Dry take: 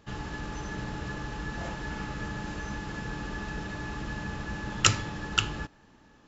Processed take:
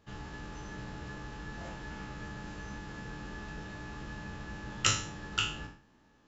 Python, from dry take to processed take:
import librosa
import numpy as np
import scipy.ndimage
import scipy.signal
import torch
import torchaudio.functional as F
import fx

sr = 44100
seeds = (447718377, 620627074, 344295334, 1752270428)

y = fx.spec_trails(x, sr, decay_s=0.47)
y = y * 10.0 ** (-8.5 / 20.0)